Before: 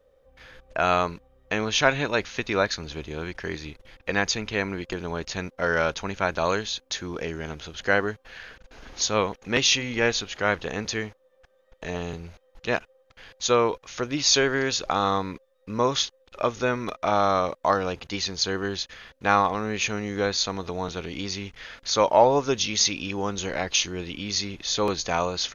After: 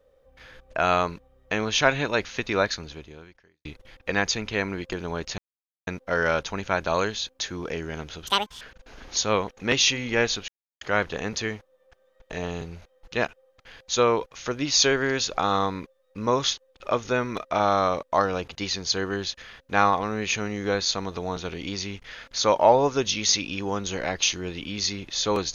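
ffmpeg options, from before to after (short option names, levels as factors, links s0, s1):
-filter_complex "[0:a]asplit=6[s0][s1][s2][s3][s4][s5];[s0]atrim=end=3.65,asetpts=PTS-STARTPTS,afade=t=out:st=2.71:d=0.94:c=qua[s6];[s1]atrim=start=3.65:end=5.38,asetpts=PTS-STARTPTS,afade=t=in:d=0.004:c=hsin,afade=t=out:st=1.726:d=0.004:c=hsin,apad=pad_dur=0.49[s7];[s2]atrim=start=5.38:end=7.784,asetpts=PTS-STARTPTS,afade=t=in:d=0.004:c=hsin[s8];[s3]atrim=start=7.78:end=8.46,asetpts=PTS-STARTPTS,asetrate=87759,aresample=44100,atrim=end_sample=15069,asetpts=PTS-STARTPTS[s9];[s4]atrim=start=8.456:end=10.33,asetpts=PTS-STARTPTS,afade=t=out:st=1.87:d=0.004:c=hsin,apad=pad_dur=0.33[s10];[s5]atrim=start=10.33,asetpts=PTS-STARTPTS,afade=t=in:d=0.004:c=hsin[s11];[s6][s7][s8]concat=n=3:v=0:a=1[s12];[s12][s9]acrossfade=d=0.004:c1=hsin:c2=hsin[s13];[s10][s11]concat=n=2:v=0:a=1[s14];[s13][s14]acrossfade=d=0.004:c1=hsin:c2=hsin"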